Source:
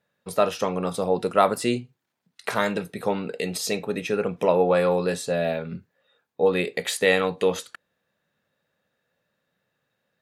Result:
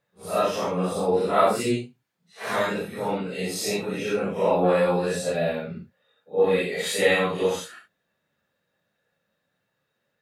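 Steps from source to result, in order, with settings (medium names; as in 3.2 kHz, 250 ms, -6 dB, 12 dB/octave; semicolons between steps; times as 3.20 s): phase randomisation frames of 200 ms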